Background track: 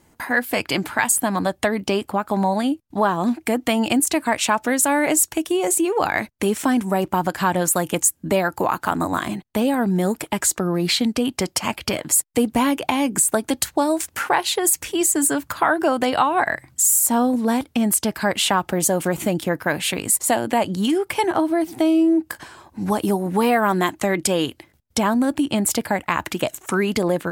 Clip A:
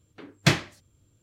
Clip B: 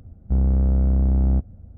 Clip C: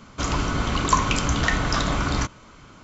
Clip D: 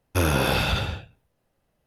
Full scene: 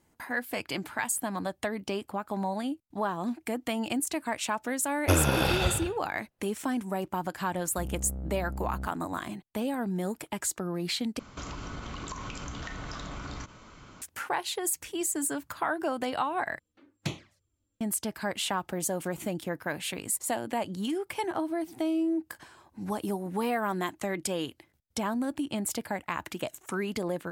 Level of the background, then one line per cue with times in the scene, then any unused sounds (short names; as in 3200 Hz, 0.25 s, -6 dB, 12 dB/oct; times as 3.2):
background track -11.5 dB
4.93 add D -3.5 dB + transient shaper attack +4 dB, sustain -6 dB
7.47 add B -13.5 dB + low shelf 150 Hz -6 dB
11.19 replace with C -3.5 dB + compressor 12:1, threshold -31 dBFS
16.59 replace with A -12 dB + envelope flanger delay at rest 4 ms, full sweep at -18.5 dBFS